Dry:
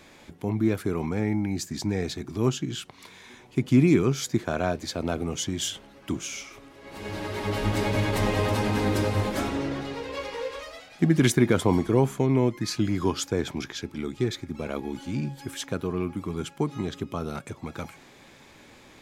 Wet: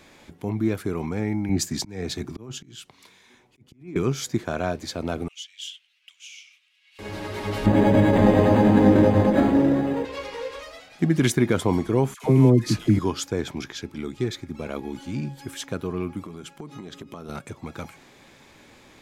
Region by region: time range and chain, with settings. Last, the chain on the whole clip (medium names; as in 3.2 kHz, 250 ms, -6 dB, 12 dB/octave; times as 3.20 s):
1.49–3.96 s: compressor with a negative ratio -25 dBFS + slow attack 303 ms + three bands expanded up and down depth 70%
5.28–6.99 s: ladder high-pass 2.4 kHz, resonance 55% + treble shelf 8.8 kHz -7.5 dB
7.66–10.05 s: peaking EQ 840 Hz +5 dB 0.29 oct + small resonant body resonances 200/280/530/1700 Hz, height 10 dB, ringing for 20 ms + decimation joined by straight lines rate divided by 8×
12.14–12.99 s: CVSD coder 64 kbps + bass shelf 350 Hz +10 dB + phase dispersion lows, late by 101 ms, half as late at 810 Hz
16.23–17.29 s: peaking EQ 94 Hz -13 dB 0.42 oct + compression 16:1, threshold -33 dBFS
whole clip: none